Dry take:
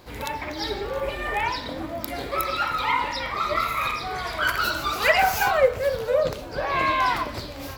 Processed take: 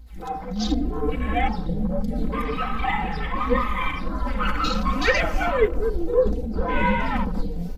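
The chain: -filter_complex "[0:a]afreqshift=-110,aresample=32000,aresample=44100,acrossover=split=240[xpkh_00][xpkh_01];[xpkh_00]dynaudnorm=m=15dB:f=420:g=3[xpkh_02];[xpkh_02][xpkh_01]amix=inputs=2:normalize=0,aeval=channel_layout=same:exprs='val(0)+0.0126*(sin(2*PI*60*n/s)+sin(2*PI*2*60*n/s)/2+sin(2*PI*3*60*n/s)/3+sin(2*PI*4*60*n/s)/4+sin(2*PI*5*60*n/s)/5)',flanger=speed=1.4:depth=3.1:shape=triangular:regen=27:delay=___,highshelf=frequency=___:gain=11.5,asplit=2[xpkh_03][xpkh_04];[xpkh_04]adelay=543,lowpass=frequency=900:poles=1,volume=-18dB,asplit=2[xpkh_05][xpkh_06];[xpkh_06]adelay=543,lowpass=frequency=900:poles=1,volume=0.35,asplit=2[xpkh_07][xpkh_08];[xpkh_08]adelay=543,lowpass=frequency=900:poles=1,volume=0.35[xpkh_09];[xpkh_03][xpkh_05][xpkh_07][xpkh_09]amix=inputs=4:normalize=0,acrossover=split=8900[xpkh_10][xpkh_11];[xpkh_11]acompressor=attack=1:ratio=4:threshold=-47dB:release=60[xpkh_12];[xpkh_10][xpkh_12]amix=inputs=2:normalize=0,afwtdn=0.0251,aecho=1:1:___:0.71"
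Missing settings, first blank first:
3.7, 5.8k, 3.9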